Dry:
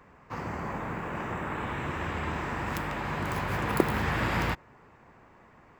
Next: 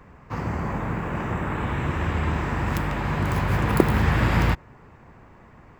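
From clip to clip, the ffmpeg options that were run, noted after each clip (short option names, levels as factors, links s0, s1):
-af "lowshelf=f=190:g=10,volume=1.5"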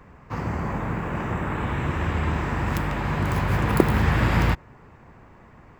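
-af anull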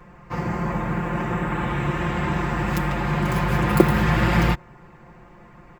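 -af "aecho=1:1:5.7:0.9"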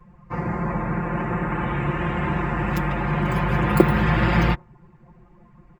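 -af "afftdn=nr=13:nf=-39"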